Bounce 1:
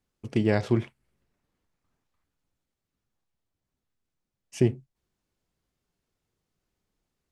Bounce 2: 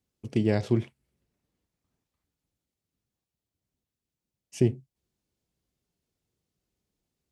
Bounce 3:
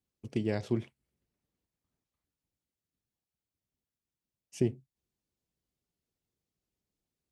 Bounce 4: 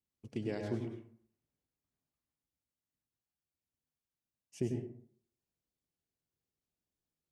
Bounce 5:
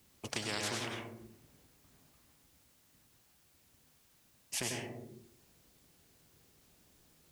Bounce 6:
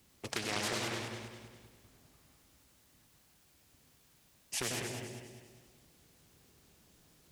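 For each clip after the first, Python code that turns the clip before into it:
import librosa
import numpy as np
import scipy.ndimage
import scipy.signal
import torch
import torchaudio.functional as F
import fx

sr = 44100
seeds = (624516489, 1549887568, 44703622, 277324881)

y1 = scipy.signal.sosfilt(scipy.signal.butter(2, 44.0, 'highpass', fs=sr, output='sos'), x)
y1 = fx.peak_eq(y1, sr, hz=1300.0, db=-7.0, octaves=1.8)
y2 = fx.hpss(y1, sr, part='harmonic', gain_db=-4)
y2 = F.gain(torch.from_numpy(y2), -4.5).numpy()
y3 = fx.rev_plate(y2, sr, seeds[0], rt60_s=0.56, hf_ratio=0.5, predelay_ms=85, drr_db=2.5)
y3 = F.gain(torch.from_numpy(y3), -7.0).numpy()
y4 = fx.spectral_comp(y3, sr, ratio=4.0)
y4 = F.gain(torch.from_numpy(y4), 1.5).numpy()
y5 = fx.echo_feedback(y4, sr, ms=200, feedback_pct=42, wet_db=-6.5)
y5 = fx.doppler_dist(y5, sr, depth_ms=0.6)
y5 = F.gain(torch.from_numpy(y5), 1.0).numpy()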